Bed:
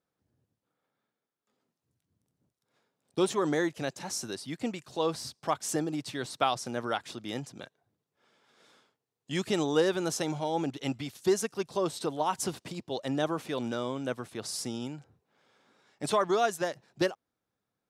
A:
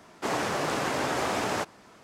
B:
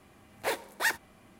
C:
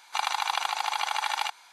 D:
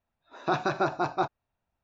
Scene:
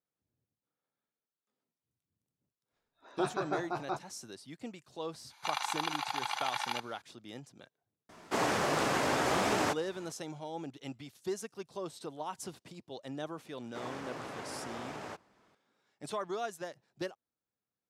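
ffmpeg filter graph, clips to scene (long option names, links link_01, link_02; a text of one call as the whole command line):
ffmpeg -i bed.wav -i cue0.wav -i cue1.wav -i cue2.wav -i cue3.wav -filter_complex "[1:a]asplit=2[link_01][link_02];[0:a]volume=-10.5dB[link_03];[4:a]asplit=2[link_04][link_05];[link_05]adelay=14,volume=-13dB[link_06];[link_04][link_06]amix=inputs=2:normalize=0[link_07];[3:a]bandreject=frequency=7900:width=5.1[link_08];[link_02]highshelf=frequency=5300:gain=-7[link_09];[link_07]atrim=end=1.83,asetpts=PTS-STARTPTS,volume=-9dB,afade=type=in:duration=0.004:curve=hsin,afade=type=out:start_time=1.826:duration=0.004:curve=hsin,adelay=2710[link_10];[link_08]atrim=end=1.72,asetpts=PTS-STARTPTS,volume=-7dB,afade=type=in:duration=0.004:curve=hsin,afade=type=out:start_time=1.716:duration=0.004:curve=hsin,adelay=5300[link_11];[link_01]atrim=end=2.03,asetpts=PTS-STARTPTS,volume=-1.5dB,afade=type=in:duration=0.004:curve=hsin,afade=type=out:start_time=2.026:duration=0.004:curve=hsin,adelay=8090[link_12];[link_09]atrim=end=2.03,asetpts=PTS-STARTPTS,volume=-14dB,afade=type=in:duration=0.004:curve=hsin,afade=type=out:start_time=2.026:duration=0.004:curve=hsin,adelay=13520[link_13];[link_03][link_10][link_11][link_12][link_13]amix=inputs=5:normalize=0" out.wav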